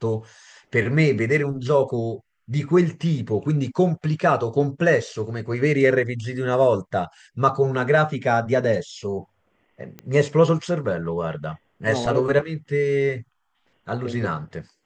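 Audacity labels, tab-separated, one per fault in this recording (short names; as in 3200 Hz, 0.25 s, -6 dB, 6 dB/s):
9.990000	9.990000	pop -21 dBFS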